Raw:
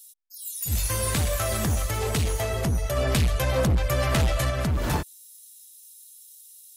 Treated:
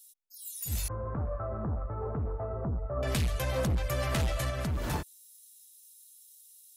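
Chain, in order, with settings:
0:00.88–0:03.03: Chebyshev low-pass filter 1,300 Hz, order 4
level −7 dB

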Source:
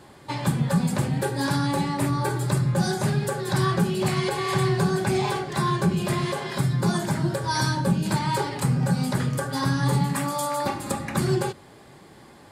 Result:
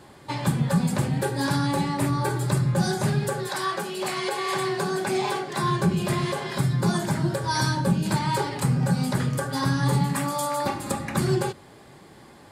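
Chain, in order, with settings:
0:03.47–0:05.62: high-pass filter 540 Hz → 200 Hz 12 dB per octave

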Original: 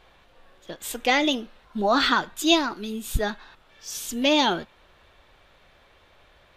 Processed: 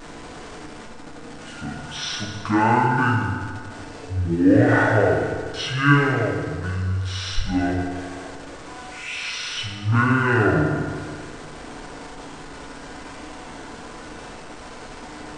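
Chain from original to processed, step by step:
converter with a step at zero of −34.5 dBFS
wrong playback speed 78 rpm record played at 33 rpm
feedback delay network reverb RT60 1.8 s, low-frequency decay 0.9×, high-frequency decay 0.7×, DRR −0.5 dB
level −1 dB

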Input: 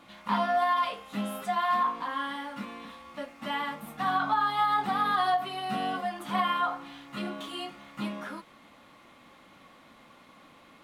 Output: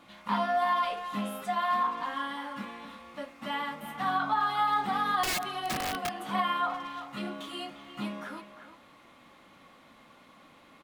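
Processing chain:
far-end echo of a speakerphone 350 ms, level −10 dB
0:05.23–0:06.15: wrap-around overflow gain 24 dB
level −1.5 dB

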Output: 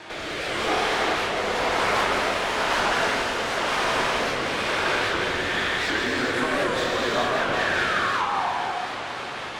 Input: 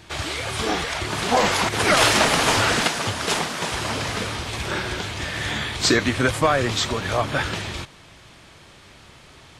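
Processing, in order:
low-shelf EQ 290 Hz −9 dB
downward compressor 6 to 1, threshold −33 dBFS, peak gain reduction 18 dB
flanger 1.1 Hz, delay 6 ms, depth 2.7 ms, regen −84%
mid-hump overdrive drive 29 dB, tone 1,000 Hz, clips at −13.5 dBFS
rotating-speaker cabinet horn 1 Hz, later 5 Hz, at 0:05.32
sound drawn into the spectrogram fall, 0:07.55–0:08.48, 690–1,900 Hz −32 dBFS
feedback delay with all-pass diffusion 510 ms, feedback 64%, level −11.5 dB
reverb whose tail is shaped and stops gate 470 ms flat, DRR −6 dB
wow of a warped record 78 rpm, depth 160 cents

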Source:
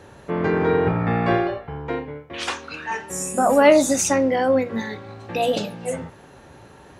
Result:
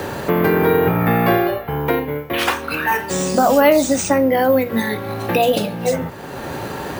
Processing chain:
bad sample-rate conversion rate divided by 3×, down none, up hold
multiband upward and downward compressor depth 70%
level +4.5 dB

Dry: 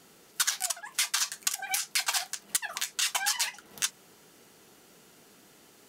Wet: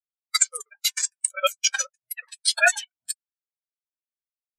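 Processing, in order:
gliding playback speed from 114% → 143%
ring modulation 380 Hz
every bin expanded away from the loudest bin 4 to 1
level +8 dB

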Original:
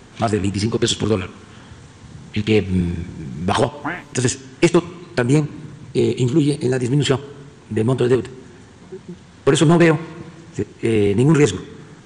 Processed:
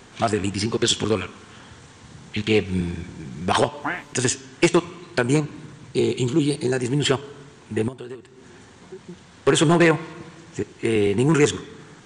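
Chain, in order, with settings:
low-shelf EQ 340 Hz −7 dB
0:07.88–0:09.04: downward compressor 10 to 1, threshold −33 dBFS, peak gain reduction 19.5 dB

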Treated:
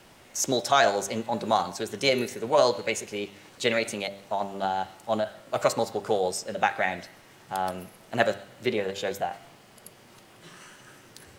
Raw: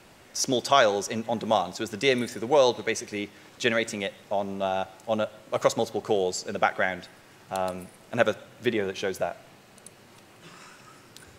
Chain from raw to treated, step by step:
hum removal 98.91 Hz, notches 39
formants moved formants +2 semitones

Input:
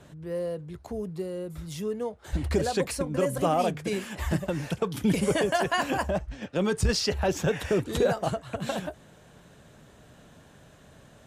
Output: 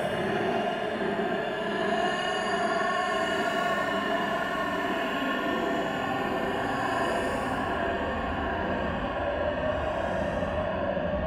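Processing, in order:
spring reverb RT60 2.1 s, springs 39 ms, chirp 65 ms, DRR −5.5 dB
extreme stretch with random phases 19×, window 0.05 s, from 0:05.63
level −8 dB

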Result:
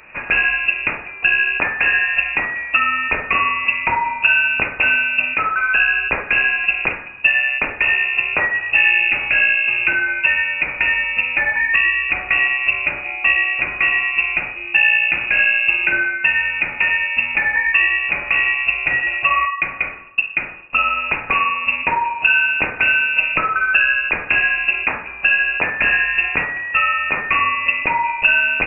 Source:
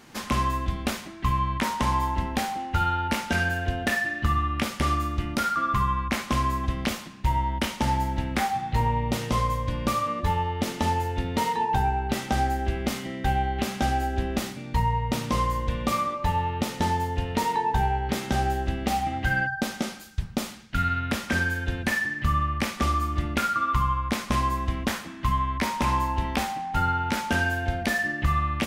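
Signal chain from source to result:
on a send: flutter between parallel walls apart 8.9 metres, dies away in 0.26 s
on the sum: voice inversion scrambler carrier 2,700 Hz
level +7.5 dB

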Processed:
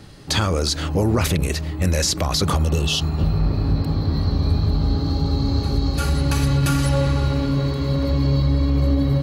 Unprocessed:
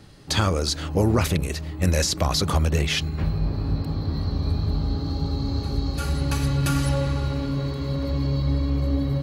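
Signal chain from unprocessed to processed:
brickwall limiter −15.5 dBFS, peak gain reduction 7 dB
healed spectral selection 0:02.59–0:03.58, 640–2,600 Hz after
level +5.5 dB

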